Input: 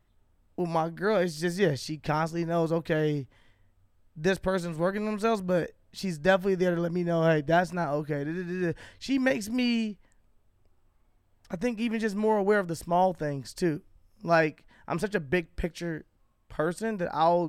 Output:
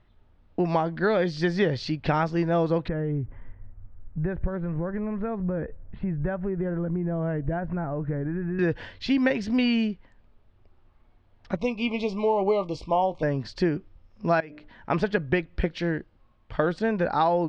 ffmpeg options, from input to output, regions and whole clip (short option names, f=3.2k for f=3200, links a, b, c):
-filter_complex "[0:a]asettb=1/sr,asplit=3[a][b][c];[a]atrim=end=2.884[d];[b]atrim=start=2.88:end=8.59,asetpts=PTS-STARTPTS,afade=t=in:d=0.004:c=qsin,afade=t=out:st=5.706:d=0.004:c=qsin,acompressor=threshold=-40dB:ratio=3:attack=3.2:release=140:knee=1:detection=peak,lowpass=f=2.1k:w=0.5412,lowpass=f=2.1k:w=1.3066,aemphasis=mode=reproduction:type=bsi[e];[c]atrim=start=8.586[f];[d][e]acrossfade=d=0.004:c1=hsin:c2=qsin[g];[g][f]acrossfade=d=0.004:c1=qsin:c2=hsin,asettb=1/sr,asplit=3[h][i][j];[h]atrim=end=11.564[k];[i]atrim=start=11.56:end=13.23,asetpts=PTS-STARTPTS,afade=t=in:d=0.004:c=qsin,afade=t=out:st=1.666:d=0.004:c=qsin,asuperstop=centerf=1600:order=20:qfactor=1.8,equalizer=f=170:w=0.48:g=-7.5,asplit=2[l][m];[m]adelay=21,volume=-12.5dB[n];[l][n]amix=inputs=2:normalize=0,atrim=end_sample=73647[o];[j]atrim=start=13.226[p];[k][o]acrossfade=d=0.004:c1=hsin:c2=qsin[q];[q][p]acrossfade=d=0.004:c1=qsin:c2=hsin,asettb=1/sr,asplit=3[r][s][t];[r]atrim=end=14.404[u];[s]atrim=start=14.4:end=14.9,asetpts=PTS-STARTPTS,afade=t=in:d=0.004:c=qsin,afade=t=out:st=0.496:d=0.004:c=qsin,bandreject=f=60:t=h:w=6,bandreject=f=120:t=h:w=6,bandreject=f=180:t=h:w=6,bandreject=f=240:t=h:w=6,bandreject=f=300:t=h:w=6,bandreject=f=360:t=h:w=6,bandreject=f=420:t=h:w=6,bandreject=f=480:t=h:w=6,bandreject=f=540:t=h:w=6,bandreject=f=600:t=h:w=6,acompressor=threshold=-40dB:ratio=6:attack=3.2:release=140:knee=1:detection=peak[v];[t]atrim=start=14.896[w];[u][v]acrossfade=d=0.004:c1=hsin:c2=qsin[x];[x][w]acrossfade=d=0.004:c1=qsin:c2=hsin,lowpass=f=4.4k:w=0.5412,lowpass=f=4.4k:w=1.3066,acompressor=threshold=-26dB:ratio=6,volume=7dB"